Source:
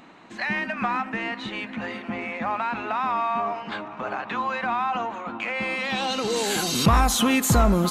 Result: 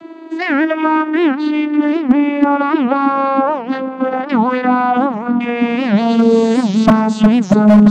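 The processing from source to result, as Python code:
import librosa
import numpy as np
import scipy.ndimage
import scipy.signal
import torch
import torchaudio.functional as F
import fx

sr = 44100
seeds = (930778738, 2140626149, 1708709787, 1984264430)

y = fx.vocoder_glide(x, sr, note=64, semitones=-8)
y = fx.low_shelf(y, sr, hz=420.0, db=10.0)
y = fx.rider(y, sr, range_db=4, speed_s=2.0)
y = 10.0 ** (-10.5 / 20.0) * (np.abs((y / 10.0 ** (-10.5 / 20.0) + 3.0) % 4.0 - 2.0) - 1.0)
y = fx.record_warp(y, sr, rpm=78.0, depth_cents=250.0)
y = F.gain(torch.from_numpy(y), 9.0).numpy()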